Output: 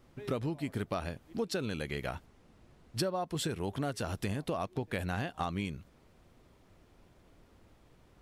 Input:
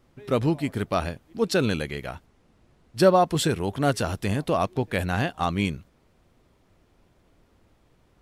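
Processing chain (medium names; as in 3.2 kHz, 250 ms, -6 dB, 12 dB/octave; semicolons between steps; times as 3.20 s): compression 8:1, threshold -31 dBFS, peak gain reduction 18.5 dB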